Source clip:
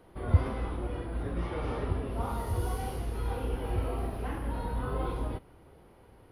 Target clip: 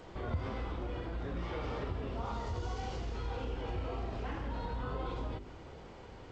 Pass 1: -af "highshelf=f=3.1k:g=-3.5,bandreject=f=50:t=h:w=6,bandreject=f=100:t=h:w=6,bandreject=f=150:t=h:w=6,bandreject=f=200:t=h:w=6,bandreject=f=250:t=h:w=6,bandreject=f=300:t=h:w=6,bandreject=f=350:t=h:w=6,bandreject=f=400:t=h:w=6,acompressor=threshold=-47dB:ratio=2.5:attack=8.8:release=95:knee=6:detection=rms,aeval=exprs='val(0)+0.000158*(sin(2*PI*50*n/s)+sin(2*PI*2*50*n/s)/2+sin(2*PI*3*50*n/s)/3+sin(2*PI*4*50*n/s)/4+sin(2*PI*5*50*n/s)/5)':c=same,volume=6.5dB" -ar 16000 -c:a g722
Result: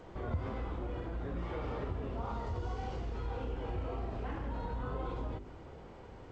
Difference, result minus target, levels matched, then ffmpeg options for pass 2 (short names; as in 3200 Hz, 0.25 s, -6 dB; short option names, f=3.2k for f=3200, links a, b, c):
4000 Hz band -5.5 dB
-af "highshelf=f=3.1k:g=8,bandreject=f=50:t=h:w=6,bandreject=f=100:t=h:w=6,bandreject=f=150:t=h:w=6,bandreject=f=200:t=h:w=6,bandreject=f=250:t=h:w=6,bandreject=f=300:t=h:w=6,bandreject=f=350:t=h:w=6,bandreject=f=400:t=h:w=6,acompressor=threshold=-47dB:ratio=2.5:attack=8.8:release=95:knee=6:detection=rms,aeval=exprs='val(0)+0.000158*(sin(2*PI*50*n/s)+sin(2*PI*2*50*n/s)/2+sin(2*PI*3*50*n/s)/3+sin(2*PI*4*50*n/s)/4+sin(2*PI*5*50*n/s)/5)':c=same,volume=6.5dB" -ar 16000 -c:a g722